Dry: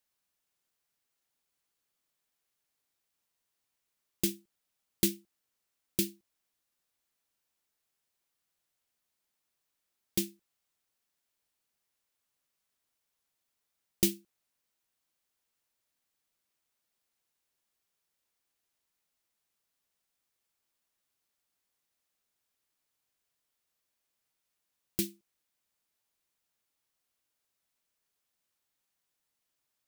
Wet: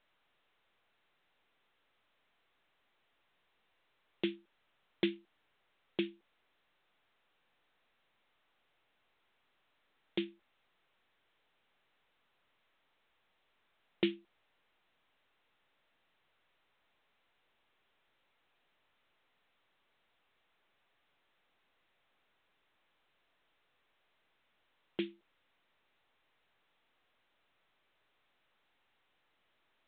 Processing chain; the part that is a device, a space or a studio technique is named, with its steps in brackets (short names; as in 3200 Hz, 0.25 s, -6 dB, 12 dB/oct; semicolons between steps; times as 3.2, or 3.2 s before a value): telephone (BPF 350–3200 Hz; gain +3.5 dB; µ-law 64 kbps 8000 Hz)